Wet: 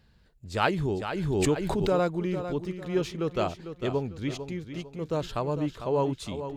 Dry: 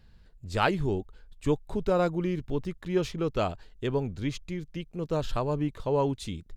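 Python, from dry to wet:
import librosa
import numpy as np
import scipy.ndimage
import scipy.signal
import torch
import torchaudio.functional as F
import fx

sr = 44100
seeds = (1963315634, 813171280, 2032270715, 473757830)

y = fx.highpass(x, sr, hz=88.0, slope=6)
y = fx.echo_feedback(y, sr, ms=450, feedback_pct=34, wet_db=-10.0)
y = fx.pre_swell(y, sr, db_per_s=26.0, at=(0.64, 2.0))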